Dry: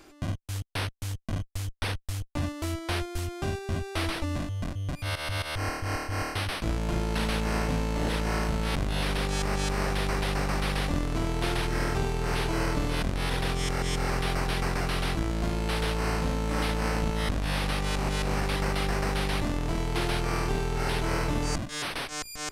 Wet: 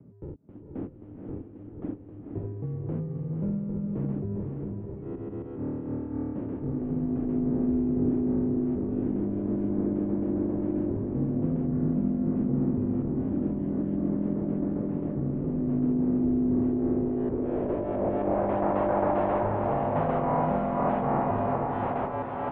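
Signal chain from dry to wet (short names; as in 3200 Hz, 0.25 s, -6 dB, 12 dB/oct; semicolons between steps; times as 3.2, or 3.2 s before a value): Bessel high-pass 160 Hz; mistuned SSB -190 Hz 280–3400 Hz; low-pass sweep 290 Hz -> 810 Hz, 16.59–18.72; diffused feedback echo 0.491 s, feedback 43%, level -3.5 dB; gain +3 dB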